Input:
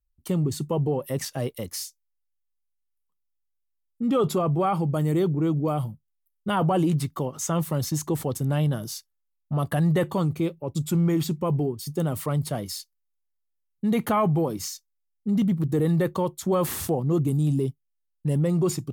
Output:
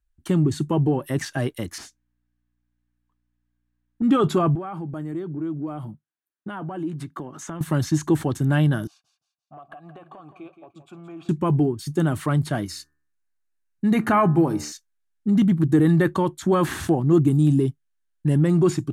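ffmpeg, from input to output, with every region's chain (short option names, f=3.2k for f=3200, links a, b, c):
-filter_complex "[0:a]asettb=1/sr,asplit=3[a][b][c];[a]atrim=end=1.784[d];[b]atrim=start=1.78:end=4.02,asetpts=PTS-STARTPTS,afade=t=in:d=0.004:c=qsin,afade=t=out:st=2.236:d=0.004:c=qsin,bandreject=f=1.4k:w=15,asplit=2[e][f];[f]highpass=f=720:p=1,volume=14dB,asoftclip=type=tanh:threshold=-21.5dB[g];[e][g]amix=inputs=2:normalize=0,lowpass=f=1.2k:p=1,volume=-6dB,aeval=exprs='val(0)+0.000112*(sin(2*PI*60*n/s)+sin(2*PI*2*60*n/s)/2+sin(2*PI*3*60*n/s)/3+sin(2*PI*4*60*n/s)/4+sin(2*PI*5*60*n/s)/5)':c=same[h];[c]atrim=start=4.016[i];[d][h]acrossfade=d=0.004:c1=hsin:c2=qsin[j];[j][i]acrossfade=d=0.004:c1=qsin:c2=hsin,asettb=1/sr,asplit=3[k][l][m];[k]atrim=end=4.554[n];[l]atrim=start=4.55:end=7.61,asetpts=PTS-STARTPTS,afade=t=in:d=0.004:c=qsin,afade=t=out:st=3.056:d=0.004:c=qsin,highpass=160,highshelf=f=2.3k:g=-9,acompressor=threshold=-33dB:ratio=8:attack=3.2:release=140:knee=1:detection=peak[o];[m]atrim=start=7.606[p];[n][o]acrossfade=d=0.004:c1=hsin:c2=qsin[q];[q][p]acrossfade=d=0.004:c1=qsin:c2=hsin,asettb=1/sr,asplit=3[r][s][t];[r]atrim=end=8.874[u];[s]atrim=start=8.87:end=11.29,asetpts=PTS-STARTPTS,afade=t=in:d=0.004:c=qsin,afade=t=out:st=2.416:d=0.004:c=qsin,asplit=3[v][w][x];[v]bandpass=f=730:t=q:w=8,volume=0dB[y];[w]bandpass=f=1.09k:t=q:w=8,volume=-6dB[z];[x]bandpass=f=2.44k:t=q:w=8,volume=-9dB[aa];[y][z][aa]amix=inputs=3:normalize=0,acompressor=threshold=-42dB:ratio=16:attack=3.2:release=140:knee=1:detection=peak,aecho=1:1:171|342|513:0.282|0.0874|0.0271,atrim=end_sample=106722[ab];[t]atrim=start=11.286[ac];[u][ab]acrossfade=d=0.004:c1=hsin:c2=qsin[ad];[ad][ac]acrossfade=d=0.004:c1=qsin:c2=hsin,asettb=1/sr,asplit=3[ae][af][ag];[ae]atrim=end=12.664[ah];[af]atrim=start=12.66:end=14.72,asetpts=PTS-STARTPTS,afade=t=in:d=0.004:c=qsin,afade=t=out:st=2.056:d=0.004:c=qsin,bandreject=f=3.3k:w=5.4,bandreject=f=74.22:t=h:w=4,bandreject=f=148.44:t=h:w=4,bandreject=f=222.66:t=h:w=4,bandreject=f=296.88:t=h:w=4,bandreject=f=371.1:t=h:w=4,bandreject=f=445.32:t=h:w=4,bandreject=f=519.54:t=h:w=4,bandreject=f=593.76:t=h:w=4,bandreject=f=667.98:t=h:w=4,bandreject=f=742.2:t=h:w=4,bandreject=f=816.42:t=h:w=4,bandreject=f=890.64:t=h:w=4,bandreject=f=964.86:t=h:w=4,bandreject=f=1.03908k:t=h:w=4,bandreject=f=1.1133k:t=h:w=4,bandreject=f=1.18752k:t=h:w=4,bandreject=f=1.26174k:t=h:w=4,bandreject=f=1.33596k:t=h:w=4,bandreject=f=1.41018k:t=h:w=4,bandreject=f=1.4844k:t=h:w=4,bandreject=f=1.55862k:t=h:w=4,bandreject=f=1.63284k:t=h:w=4,bandreject=f=1.70706k:t=h:w=4,bandreject=f=1.78128k:t=h:w=4,bandreject=f=1.8555k:t=h:w=4[ai];[ag]atrim=start=14.716[aj];[ah][ai]acrossfade=d=0.004:c1=hsin:c2=qsin[ak];[ak][aj]acrossfade=d=0.004:c1=qsin:c2=hsin,lowpass=10k,acrossover=split=5900[al][am];[am]acompressor=threshold=-43dB:ratio=4:attack=1:release=60[an];[al][an]amix=inputs=2:normalize=0,equalizer=f=315:t=o:w=0.33:g=7,equalizer=f=500:t=o:w=0.33:g=-9,equalizer=f=1.6k:t=o:w=0.33:g=10,equalizer=f=5k:t=o:w=0.33:g=-5,volume=4dB"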